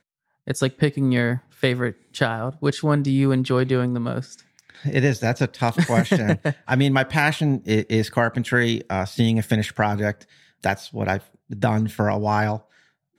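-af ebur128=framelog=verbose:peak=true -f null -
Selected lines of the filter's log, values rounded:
Integrated loudness:
  I:         -22.1 LUFS
  Threshold: -32.5 LUFS
Loudness range:
  LRA:         3.3 LU
  Threshold: -42.2 LUFS
  LRA low:   -24.1 LUFS
  LRA high:  -20.8 LUFS
True peak:
  Peak:       -4.4 dBFS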